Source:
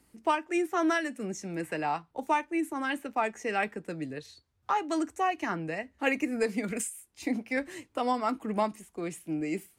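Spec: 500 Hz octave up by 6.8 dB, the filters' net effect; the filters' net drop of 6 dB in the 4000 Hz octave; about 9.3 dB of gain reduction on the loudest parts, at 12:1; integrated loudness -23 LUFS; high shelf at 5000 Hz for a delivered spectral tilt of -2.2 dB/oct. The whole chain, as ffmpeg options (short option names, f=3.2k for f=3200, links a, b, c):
-af "equalizer=f=500:t=o:g=9,equalizer=f=4k:t=o:g=-6,highshelf=f=5k:g=-7.5,acompressor=threshold=-25dB:ratio=12,volume=9dB"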